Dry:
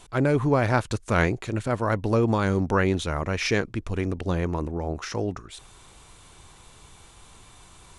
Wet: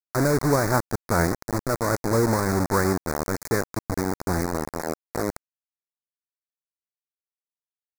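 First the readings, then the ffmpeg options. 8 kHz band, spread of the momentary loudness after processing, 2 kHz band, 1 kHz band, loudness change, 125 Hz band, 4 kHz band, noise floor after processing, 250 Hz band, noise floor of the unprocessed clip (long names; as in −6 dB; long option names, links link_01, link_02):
+8.0 dB, 9 LU, −1.0 dB, +2.0 dB, +0.5 dB, −1.0 dB, −1.5 dB, below −85 dBFS, 0.0 dB, −52 dBFS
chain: -filter_complex "[0:a]acrossover=split=3100[link_01][link_02];[link_02]acompressor=threshold=-51dB:ratio=4:attack=1:release=60[link_03];[link_01][link_03]amix=inputs=2:normalize=0,acrusher=bits=3:mix=0:aa=0.000001,asuperstop=centerf=3000:order=4:qfactor=1"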